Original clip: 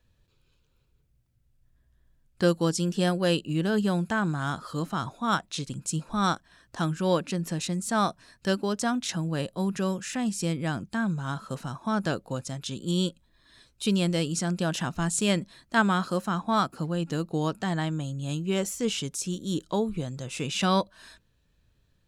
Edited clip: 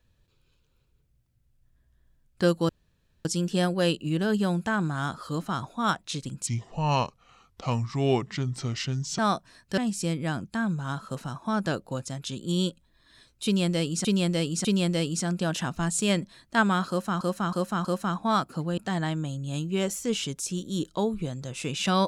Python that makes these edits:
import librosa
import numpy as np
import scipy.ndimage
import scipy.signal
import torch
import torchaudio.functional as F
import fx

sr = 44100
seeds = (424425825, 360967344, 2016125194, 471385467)

y = fx.edit(x, sr, fx.insert_room_tone(at_s=2.69, length_s=0.56),
    fx.speed_span(start_s=5.91, length_s=2.01, speed=0.74),
    fx.cut(start_s=8.51, length_s=1.66),
    fx.repeat(start_s=13.84, length_s=0.6, count=3),
    fx.repeat(start_s=16.08, length_s=0.32, count=4),
    fx.cut(start_s=17.01, length_s=0.52), tone=tone)